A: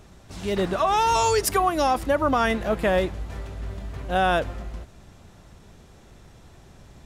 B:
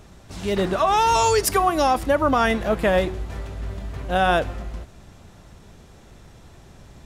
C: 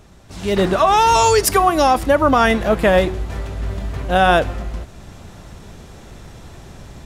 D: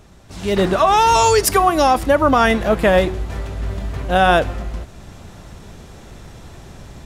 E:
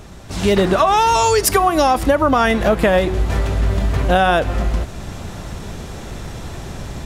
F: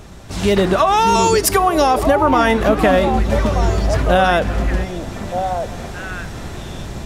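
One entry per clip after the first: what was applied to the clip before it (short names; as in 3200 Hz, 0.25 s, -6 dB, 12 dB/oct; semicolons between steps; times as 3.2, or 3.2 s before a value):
de-hum 374.4 Hz, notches 33; gain +2.5 dB
AGC gain up to 8.5 dB
nothing audible
compressor 6:1, threshold -20 dBFS, peak gain reduction 11 dB; gain +8.5 dB
delay with a stepping band-pass 0.614 s, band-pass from 260 Hz, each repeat 1.4 oct, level -2 dB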